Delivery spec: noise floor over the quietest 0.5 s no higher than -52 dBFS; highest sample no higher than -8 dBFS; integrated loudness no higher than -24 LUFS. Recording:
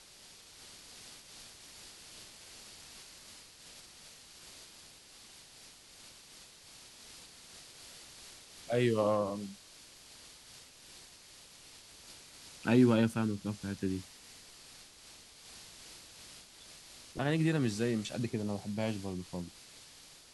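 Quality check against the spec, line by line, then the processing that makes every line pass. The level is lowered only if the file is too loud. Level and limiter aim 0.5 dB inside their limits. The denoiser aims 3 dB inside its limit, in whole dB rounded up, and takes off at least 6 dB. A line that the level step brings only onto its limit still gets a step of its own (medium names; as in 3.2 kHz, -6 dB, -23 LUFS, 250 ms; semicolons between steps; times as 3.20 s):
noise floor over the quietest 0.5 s -56 dBFS: pass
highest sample -14.5 dBFS: pass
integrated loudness -33.0 LUFS: pass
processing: none needed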